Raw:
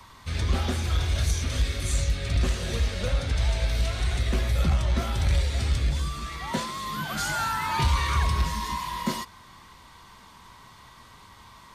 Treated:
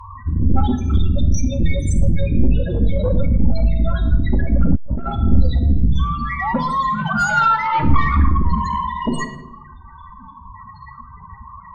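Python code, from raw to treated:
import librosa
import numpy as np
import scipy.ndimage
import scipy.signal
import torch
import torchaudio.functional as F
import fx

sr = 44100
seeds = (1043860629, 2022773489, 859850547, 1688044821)

y = fx.dereverb_blind(x, sr, rt60_s=1.6)
y = fx.clip_asym(y, sr, top_db=-38.0, bottom_db=-17.0)
y = fx.spec_topn(y, sr, count=8)
y = fx.fold_sine(y, sr, drive_db=11, ceiling_db=-16.5)
y = fx.room_shoebox(y, sr, seeds[0], volume_m3=3200.0, walls='furnished', distance_m=2.3)
y = fx.transformer_sat(y, sr, knee_hz=90.0, at=(4.75, 5.24))
y = y * 10.0 ** (2.0 / 20.0)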